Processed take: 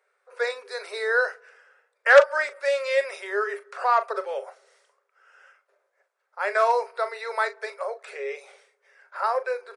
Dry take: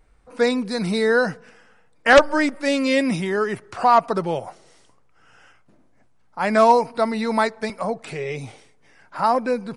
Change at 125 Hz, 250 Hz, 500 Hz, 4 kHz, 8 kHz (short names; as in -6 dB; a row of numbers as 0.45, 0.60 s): under -40 dB, under -25 dB, -3.5 dB, -8.0 dB, -8.5 dB